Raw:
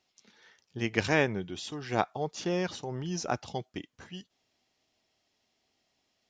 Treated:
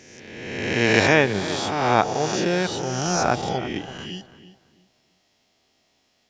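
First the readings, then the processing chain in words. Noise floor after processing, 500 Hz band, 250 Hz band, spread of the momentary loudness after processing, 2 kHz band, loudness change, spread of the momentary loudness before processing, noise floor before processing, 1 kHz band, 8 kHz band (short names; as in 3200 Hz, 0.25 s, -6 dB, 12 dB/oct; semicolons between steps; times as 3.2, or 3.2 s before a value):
-67 dBFS, +10.5 dB, +9.5 dB, 17 LU, +11.5 dB, +10.0 dB, 19 LU, -78 dBFS, +12.0 dB, +13.0 dB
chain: spectral swells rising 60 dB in 1.53 s; darkening echo 0.332 s, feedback 26%, low-pass 2300 Hz, level -13 dB; gain +6.5 dB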